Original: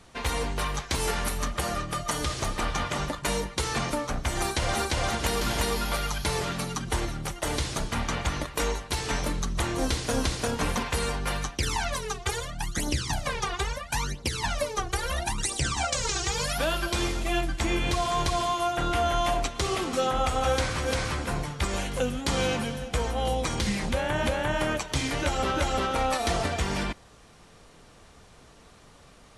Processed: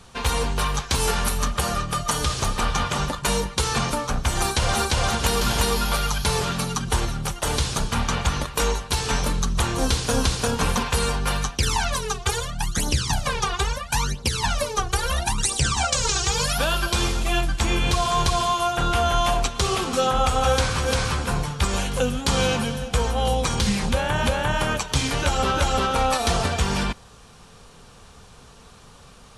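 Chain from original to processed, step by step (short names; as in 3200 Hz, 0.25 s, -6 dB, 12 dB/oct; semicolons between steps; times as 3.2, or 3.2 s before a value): thirty-one-band EQ 315 Hz -10 dB, 630 Hz -6 dB, 2000 Hz -7 dB; gain +6.5 dB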